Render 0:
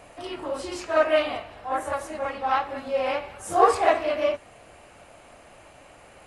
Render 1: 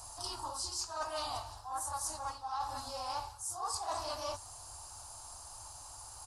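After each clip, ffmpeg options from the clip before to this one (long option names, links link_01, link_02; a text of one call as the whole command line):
ffmpeg -i in.wav -af "firequalizer=gain_entry='entry(100,0);entry(180,-27);entry(250,-18);entry(540,-21);entry(890,1);entry(2100,-24);entry(4700,10)':delay=0.05:min_phase=1,areverse,acompressor=threshold=-37dB:ratio=16,areverse,volume=2.5dB" out.wav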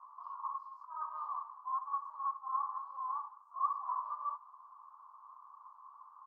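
ffmpeg -i in.wav -af "asuperpass=centerf=1100:order=4:qfactor=6.3,volume=8.5dB" out.wav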